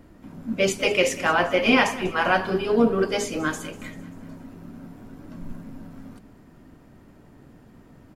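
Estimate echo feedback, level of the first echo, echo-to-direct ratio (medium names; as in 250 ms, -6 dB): 53%, -18.5 dB, -17.0 dB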